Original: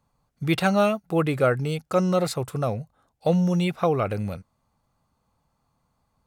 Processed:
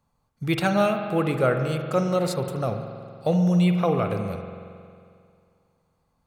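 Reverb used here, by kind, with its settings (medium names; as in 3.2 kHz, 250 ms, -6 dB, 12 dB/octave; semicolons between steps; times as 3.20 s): spring tank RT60 2.3 s, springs 45 ms, chirp 30 ms, DRR 5.5 dB; trim -1.5 dB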